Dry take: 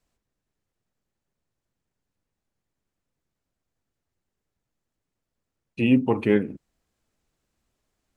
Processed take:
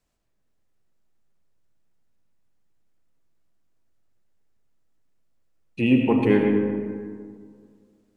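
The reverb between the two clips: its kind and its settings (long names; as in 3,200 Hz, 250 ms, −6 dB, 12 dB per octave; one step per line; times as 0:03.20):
comb and all-pass reverb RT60 2.1 s, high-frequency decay 0.4×, pre-delay 45 ms, DRR 2 dB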